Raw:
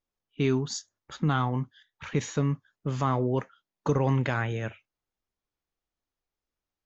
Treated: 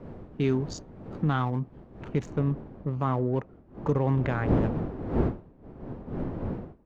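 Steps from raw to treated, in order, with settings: Wiener smoothing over 25 samples; wind noise 320 Hz -34 dBFS; high shelf 3100 Hz -6 dB, from 2.28 s -12 dB

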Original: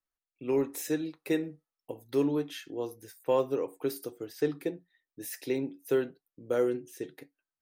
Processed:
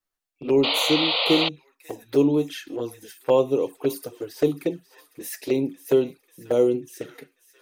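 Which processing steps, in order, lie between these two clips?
thin delay 0.541 s, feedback 65%, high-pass 1500 Hz, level -16 dB; painted sound noise, 0.63–1.49, 450–5100 Hz -29 dBFS; envelope flanger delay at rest 10.5 ms, full sweep at -27 dBFS; gain +9 dB

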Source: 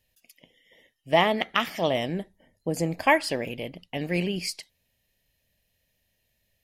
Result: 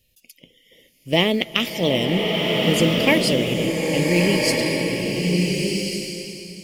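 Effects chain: band shelf 1100 Hz -14 dB; in parallel at -9.5 dB: short-mantissa float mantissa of 2-bit; on the sum: bloom reverb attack 1.45 s, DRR -1 dB; gain +5.5 dB

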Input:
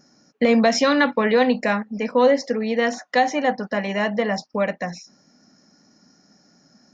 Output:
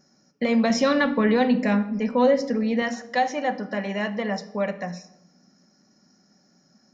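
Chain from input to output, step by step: 0.7–2.82 low shelf 250 Hz +11 dB; reverb RT60 0.90 s, pre-delay 5 ms, DRR 8.5 dB; gain -5.5 dB

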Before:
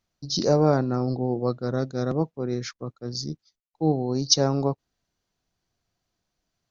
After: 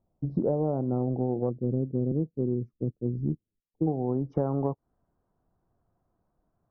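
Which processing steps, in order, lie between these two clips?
inverse Chebyshev low-pass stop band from 2800 Hz, stop band 60 dB, from 1.49 s stop band from 1400 Hz, from 3.86 s stop band from 3900 Hz; compressor 16:1, threshold -30 dBFS, peak gain reduction 16 dB; gain +7 dB

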